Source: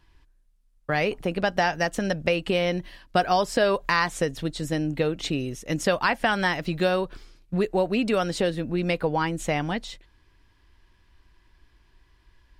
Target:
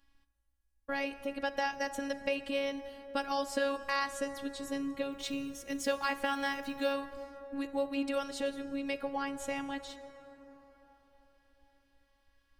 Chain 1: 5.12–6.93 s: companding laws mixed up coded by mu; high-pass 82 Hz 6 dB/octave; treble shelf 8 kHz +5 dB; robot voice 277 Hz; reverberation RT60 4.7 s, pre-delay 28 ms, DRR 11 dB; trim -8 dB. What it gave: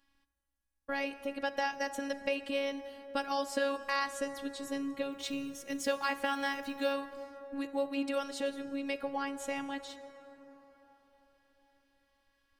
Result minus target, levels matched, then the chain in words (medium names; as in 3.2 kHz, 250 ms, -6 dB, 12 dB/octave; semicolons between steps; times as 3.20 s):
125 Hz band -4.0 dB
5.12–6.93 s: companding laws mixed up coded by mu; treble shelf 8 kHz +5 dB; robot voice 277 Hz; reverberation RT60 4.7 s, pre-delay 28 ms, DRR 11 dB; trim -8 dB